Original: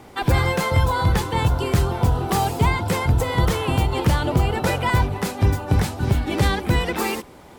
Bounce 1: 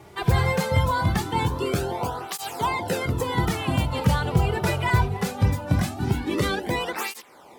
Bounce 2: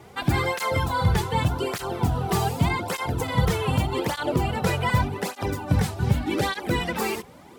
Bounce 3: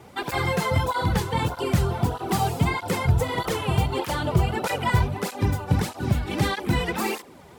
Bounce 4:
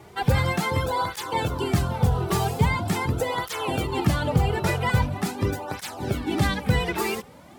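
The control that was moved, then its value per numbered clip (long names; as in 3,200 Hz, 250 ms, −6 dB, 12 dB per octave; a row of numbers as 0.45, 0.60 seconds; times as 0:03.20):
through-zero flanger with one copy inverted, nulls at: 0.21, 0.84, 1.6, 0.43 Hertz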